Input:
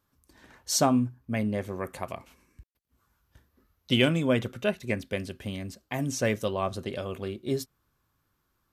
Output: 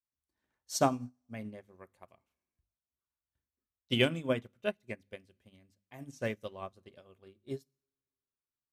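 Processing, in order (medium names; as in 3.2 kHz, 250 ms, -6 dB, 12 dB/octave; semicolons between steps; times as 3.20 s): hum notches 50/100/150/200/250/300 Hz; two-slope reverb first 0.78 s, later 2.8 s, from -18 dB, DRR 19.5 dB; upward expansion 2.5:1, over -38 dBFS; trim -1.5 dB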